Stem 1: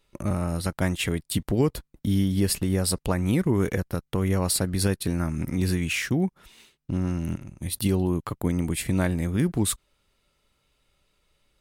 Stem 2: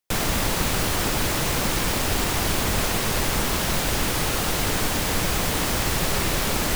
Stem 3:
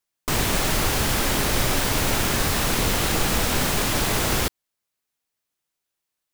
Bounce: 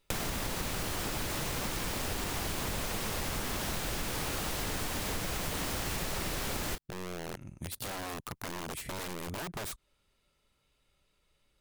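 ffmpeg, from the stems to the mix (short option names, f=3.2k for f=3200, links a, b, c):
-filter_complex "[0:a]aeval=exprs='(mod(12.6*val(0)+1,2)-1)/12.6':c=same,acompressor=threshold=-32dB:ratio=6,volume=-4.5dB[a];[1:a]volume=-1.5dB[b];[2:a]adelay=2300,volume=-12.5dB[c];[a][b][c]amix=inputs=3:normalize=0,acompressor=threshold=-32dB:ratio=6"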